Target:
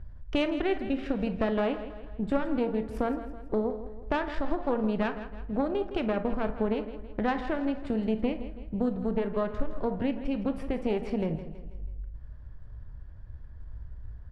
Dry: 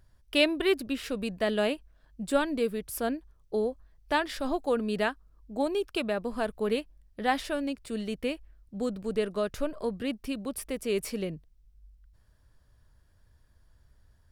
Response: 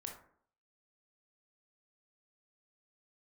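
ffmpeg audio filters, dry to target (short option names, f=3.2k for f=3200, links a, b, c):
-filter_complex "[0:a]lowpass=1.9k,lowshelf=f=190:g=12,acompressor=threshold=-38dB:ratio=3,aeval=exprs='0.075*(cos(1*acos(clip(val(0)/0.075,-1,1)))-cos(1*PI/2))+0.015*(cos(4*acos(clip(val(0)/0.075,-1,1)))-cos(4*PI/2))':c=same,aecho=1:1:163|326|489|652|815:0.237|0.111|0.0524|0.0246|0.0116,asplit=2[a][b];[1:a]atrim=start_sample=2205,highshelf=f=4.7k:g=7.5[c];[b][c]afir=irnorm=-1:irlink=0,volume=1dB[d];[a][d]amix=inputs=2:normalize=0,volume=3dB"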